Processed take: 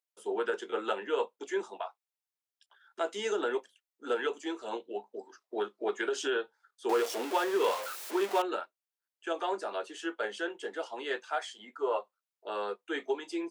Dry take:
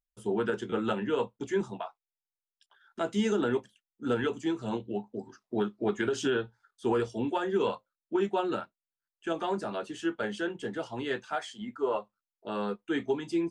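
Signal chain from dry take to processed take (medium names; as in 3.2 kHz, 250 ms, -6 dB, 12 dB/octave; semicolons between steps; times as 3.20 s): 6.89–8.42 s: jump at every zero crossing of -31 dBFS; high-pass 390 Hz 24 dB/octave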